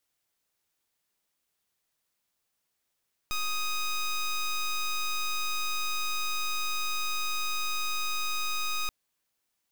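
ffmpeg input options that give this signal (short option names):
-f lavfi -i "aevalsrc='0.0335*(2*lt(mod(1250*t,1),0.13)-1)':d=5.58:s=44100"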